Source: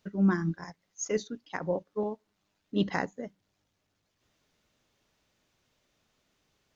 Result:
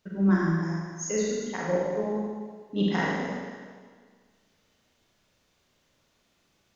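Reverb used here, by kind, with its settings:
four-comb reverb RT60 1.7 s, combs from 33 ms, DRR −5 dB
level −1.5 dB

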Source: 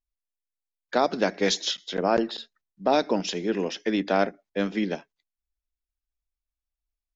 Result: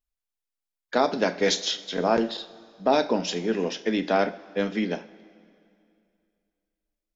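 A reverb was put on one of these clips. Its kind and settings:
coupled-rooms reverb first 0.33 s, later 2.5 s, from −18 dB, DRR 7.5 dB

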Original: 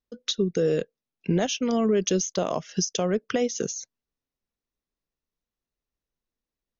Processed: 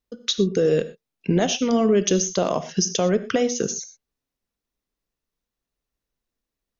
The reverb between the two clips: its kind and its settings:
reverb whose tail is shaped and stops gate 140 ms flat, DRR 11.5 dB
level +4 dB

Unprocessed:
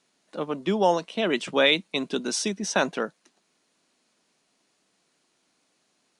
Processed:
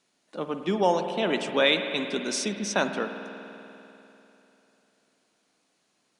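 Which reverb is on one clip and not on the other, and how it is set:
spring reverb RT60 3.2 s, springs 49 ms, chirp 65 ms, DRR 6.5 dB
level −2 dB

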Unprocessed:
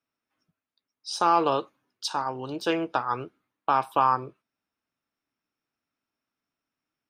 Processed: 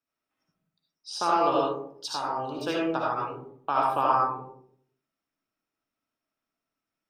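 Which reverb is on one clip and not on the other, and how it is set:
comb and all-pass reverb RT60 0.67 s, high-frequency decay 0.3×, pre-delay 35 ms, DRR −3.5 dB
level −5.5 dB

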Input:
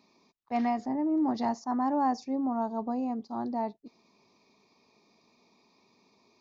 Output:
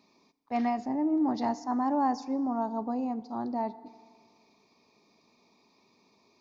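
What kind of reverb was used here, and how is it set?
feedback delay network reverb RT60 1.8 s, low-frequency decay 1×, high-frequency decay 0.7×, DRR 16 dB

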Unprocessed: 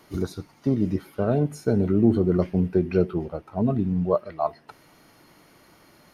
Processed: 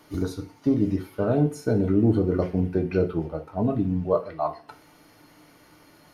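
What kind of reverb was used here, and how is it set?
feedback delay network reverb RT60 0.38 s, low-frequency decay 0.9×, high-frequency decay 0.85×, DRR 4.5 dB
level −1 dB

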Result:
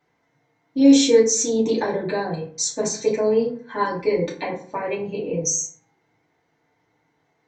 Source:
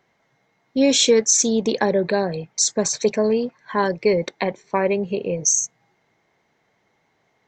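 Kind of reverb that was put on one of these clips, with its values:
feedback delay network reverb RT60 0.48 s, low-frequency decay 1.2×, high-frequency decay 0.55×, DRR −7.5 dB
level −10.5 dB

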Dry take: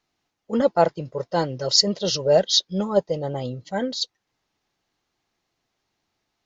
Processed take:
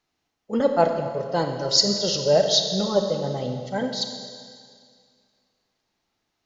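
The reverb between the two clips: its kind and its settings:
four-comb reverb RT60 2.1 s, combs from 28 ms, DRR 4.5 dB
level −1.5 dB

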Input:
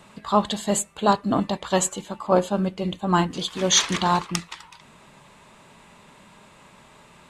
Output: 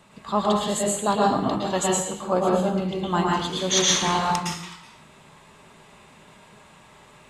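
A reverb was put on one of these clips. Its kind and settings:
dense smooth reverb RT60 0.69 s, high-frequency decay 0.85×, pre-delay 100 ms, DRR −3.5 dB
level −4.5 dB

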